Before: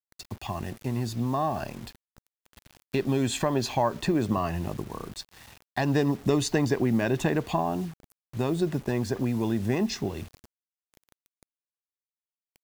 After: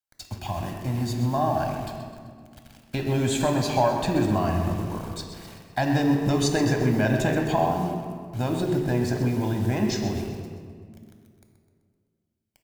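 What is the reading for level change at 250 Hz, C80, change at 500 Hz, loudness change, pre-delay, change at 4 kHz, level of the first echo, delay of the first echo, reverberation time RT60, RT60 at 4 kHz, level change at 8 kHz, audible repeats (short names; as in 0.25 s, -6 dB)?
+2.5 dB, 5.0 dB, +2.5 dB, +3.0 dB, 3 ms, +2.5 dB, -10.0 dB, 0.128 s, 2.0 s, 1.2 s, +3.0 dB, 4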